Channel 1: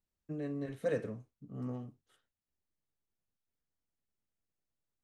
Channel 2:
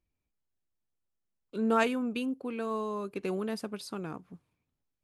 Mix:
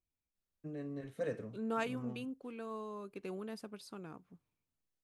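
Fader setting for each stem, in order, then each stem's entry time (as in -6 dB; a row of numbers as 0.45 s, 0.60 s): -4.5 dB, -10.0 dB; 0.35 s, 0.00 s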